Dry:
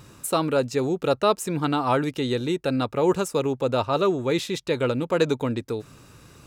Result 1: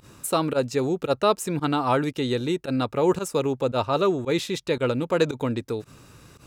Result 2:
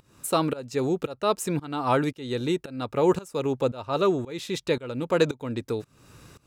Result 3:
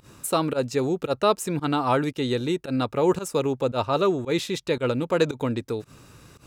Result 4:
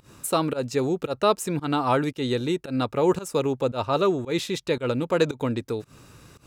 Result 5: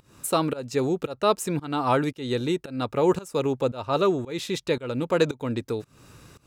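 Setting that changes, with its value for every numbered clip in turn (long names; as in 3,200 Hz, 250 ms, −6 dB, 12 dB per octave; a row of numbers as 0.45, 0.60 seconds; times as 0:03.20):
fake sidechain pumping, release: 67, 470, 100, 152, 320 milliseconds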